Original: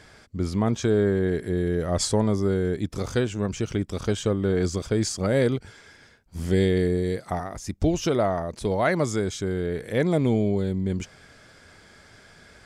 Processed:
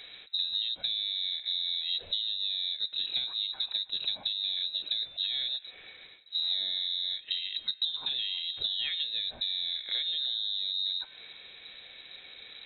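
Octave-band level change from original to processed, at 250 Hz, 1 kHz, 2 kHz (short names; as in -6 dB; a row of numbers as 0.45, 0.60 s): under -35 dB, under -20 dB, -11.5 dB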